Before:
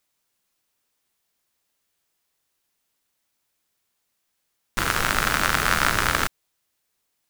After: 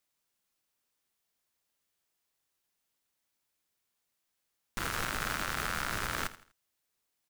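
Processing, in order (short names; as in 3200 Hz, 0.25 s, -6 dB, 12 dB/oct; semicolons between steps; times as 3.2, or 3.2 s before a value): limiter -11.5 dBFS, peak gain reduction 10 dB; on a send: feedback echo 82 ms, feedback 35%, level -16 dB; on the sum: gain -7 dB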